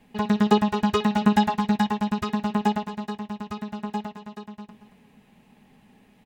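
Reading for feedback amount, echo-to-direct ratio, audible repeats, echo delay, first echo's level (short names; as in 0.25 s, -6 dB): 26%, -12.0 dB, 2, 0.227 s, -12.5 dB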